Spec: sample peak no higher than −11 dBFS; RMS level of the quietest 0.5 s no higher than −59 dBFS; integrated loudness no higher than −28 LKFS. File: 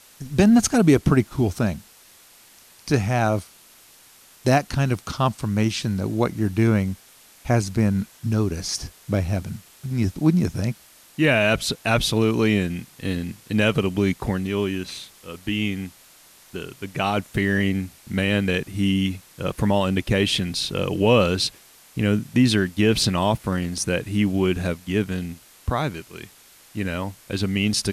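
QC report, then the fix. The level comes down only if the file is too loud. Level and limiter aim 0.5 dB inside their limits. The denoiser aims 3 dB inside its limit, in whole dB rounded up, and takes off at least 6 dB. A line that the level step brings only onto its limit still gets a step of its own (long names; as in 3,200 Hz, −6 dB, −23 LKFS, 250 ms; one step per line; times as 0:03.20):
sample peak −5.5 dBFS: out of spec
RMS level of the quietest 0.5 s −51 dBFS: out of spec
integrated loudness −22.5 LKFS: out of spec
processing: broadband denoise 6 dB, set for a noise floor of −51 dBFS
level −6 dB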